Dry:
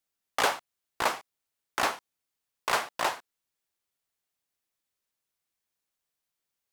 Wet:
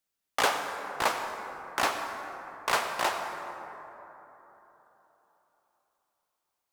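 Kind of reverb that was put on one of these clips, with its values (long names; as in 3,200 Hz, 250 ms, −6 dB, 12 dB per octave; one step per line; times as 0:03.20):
dense smooth reverb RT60 3.8 s, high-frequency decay 0.35×, pre-delay 75 ms, DRR 5.5 dB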